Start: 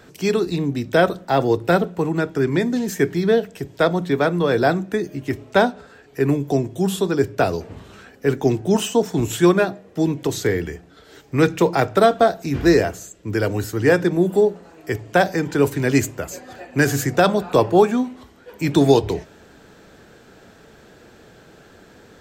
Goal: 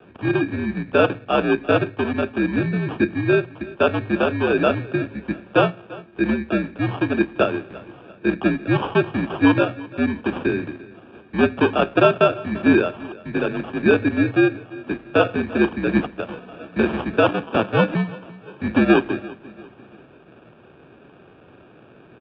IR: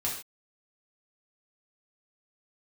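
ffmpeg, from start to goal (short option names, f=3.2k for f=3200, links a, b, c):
-filter_complex "[0:a]acrossover=split=170[a][b];[a]acompressor=threshold=-40dB:ratio=6[c];[c][b]amix=inputs=2:normalize=0,asettb=1/sr,asplit=3[d][e][f];[d]atrim=end=17.284[g];[e]atrim=start=17.28:end=17.95,asetpts=PTS-STARTPTS,afade=t=in:d=0.004:c=qsin,afade=t=out:st=0.666:d=0.004:c=qsin,aeval=exprs='val(0)*sin(2*PI*160*n/s)':c=same[h];[f]atrim=start=17.946[i];[g][h]acrossfade=d=0.004:c1=hsin:c2=qsin[j];[j][i]acrossfade=d=0.004:c1=qsin:c2=hsin,acrusher=samples=21:mix=1:aa=0.000001,highpass=f=170:t=q:w=0.5412,highpass=f=170:t=q:w=1.307,lowpass=f=3.2k:t=q:w=0.5176,lowpass=f=3.2k:t=q:w=0.7071,lowpass=f=3.2k:t=q:w=1.932,afreqshift=-70,aecho=1:1:343|686|1029:0.1|0.042|0.0176"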